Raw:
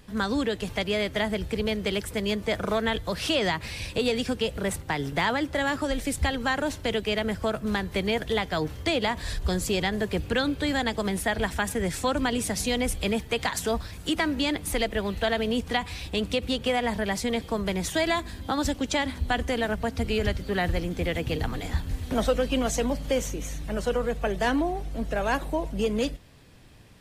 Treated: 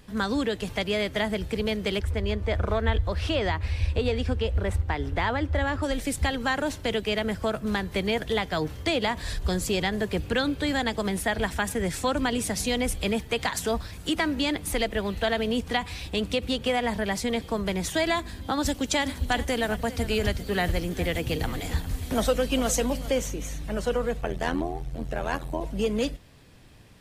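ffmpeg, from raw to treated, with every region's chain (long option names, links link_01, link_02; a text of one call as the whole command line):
ffmpeg -i in.wav -filter_complex "[0:a]asettb=1/sr,asplit=3[link_01][link_02][link_03];[link_01]atrim=end=1.994[link_04];[link_02]atrim=start=1.99:end=5.83,asetpts=PTS-STARTPTS,afade=type=in:duration=0.004:curve=qsin,afade=type=out:start_time=3.836:duration=0.004:curve=qsin,lowpass=frequency=2200:poles=1,lowshelf=frequency=110:width_type=q:width=3:gain=9.5[link_05];[link_03]atrim=start=5.826[link_06];[link_04][link_05]acrossfade=duration=0.004:curve1=hsin:curve2=qsin[link_07];[link_07][link_06]acrossfade=duration=0.004:curve1=qsin:curve2=hsin,asettb=1/sr,asplit=3[link_08][link_09][link_10];[link_08]atrim=end=18.664[link_11];[link_09]atrim=start=18.66:end=23.1,asetpts=PTS-STARTPTS,afade=type=in:duration=0.004:curve=qsin,afade=type=out:start_time=4.436:duration=0.004:curve=qsin,highshelf=frequency=6200:gain=8.5,aecho=1:1:403:0.168,atrim=end_sample=195804[link_12];[link_10]atrim=start=23.096[link_13];[link_11][link_12]acrossfade=duration=0.004:curve1=hsin:curve2=qsin[link_14];[link_14][link_13]acrossfade=duration=0.004:curve1=qsin:curve2=hsin,asettb=1/sr,asplit=3[link_15][link_16][link_17];[link_15]atrim=end=24.214[link_18];[link_16]atrim=start=24.21:end=25.61,asetpts=PTS-STARTPTS,afade=type=in:duration=0.004:curve=qsin,afade=type=out:start_time=1.396:duration=0.004:curve=qsin,equalizer=frequency=65:width=1.1:gain=5.5,tremolo=f=83:d=0.889[link_19];[link_17]atrim=start=25.606[link_20];[link_18][link_19]acrossfade=duration=0.004:curve1=hsin:curve2=qsin[link_21];[link_21][link_20]acrossfade=duration=0.004:curve1=qsin:curve2=hsin" out.wav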